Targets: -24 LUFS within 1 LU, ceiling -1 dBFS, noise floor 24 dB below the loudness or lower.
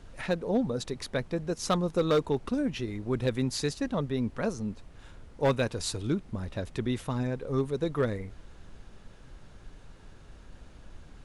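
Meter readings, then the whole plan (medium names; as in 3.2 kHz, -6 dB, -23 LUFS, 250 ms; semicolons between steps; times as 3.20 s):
clipped samples 0.3%; clipping level -18.5 dBFS; noise floor -52 dBFS; noise floor target -55 dBFS; loudness -31.0 LUFS; peak level -18.5 dBFS; loudness target -24.0 LUFS
-> clip repair -18.5 dBFS; noise print and reduce 6 dB; trim +7 dB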